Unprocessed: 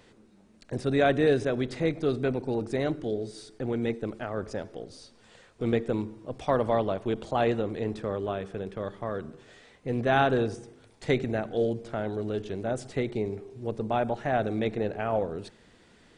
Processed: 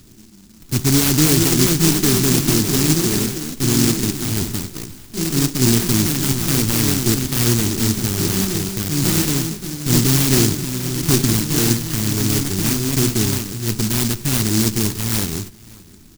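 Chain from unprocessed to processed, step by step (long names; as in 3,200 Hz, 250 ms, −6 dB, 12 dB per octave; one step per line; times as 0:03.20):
bad sample-rate conversion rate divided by 6×, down none, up zero stuff
tilt shelving filter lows +4 dB
on a send: single-tap delay 565 ms −24 dB
on the sum: delay with pitch and tempo change per echo 600 ms, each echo +3 semitones, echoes 3
in parallel at +2.5 dB: brickwall limiter −4.5 dBFS, peak gain reduction 6 dB
on the sum: elliptic band-stop filter 360–3,300 Hz
low-shelf EQ 320 Hz +10 dB
short delay modulated by noise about 5,900 Hz, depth 0.24 ms
level −4 dB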